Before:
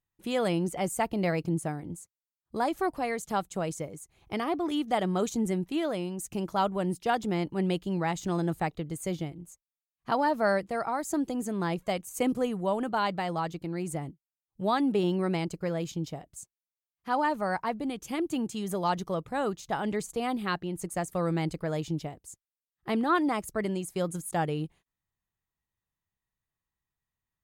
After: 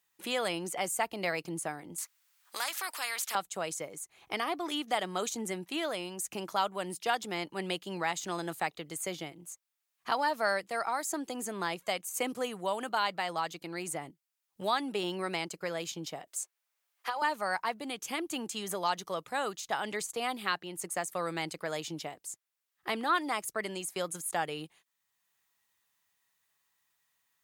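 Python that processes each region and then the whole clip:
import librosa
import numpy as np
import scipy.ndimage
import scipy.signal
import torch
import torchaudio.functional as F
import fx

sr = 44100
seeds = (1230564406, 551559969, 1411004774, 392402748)

y = fx.chain(x, sr, fx.highpass(hz=1100.0, slope=12),
    fx.spectral_comp(ratio=2.0), at=(1.98, 3.35))
y = fx.chain(y, sr, fx.highpass(hz=380.0, slope=24),
    fx.over_compress(threshold_db=-33.0, ratio=-1.0), at=(16.27, 17.22))
y = fx.highpass(y, sr, hz=1400.0, slope=6)
y = fx.band_squash(y, sr, depth_pct=40)
y = y * 10.0 ** (4.0 / 20.0)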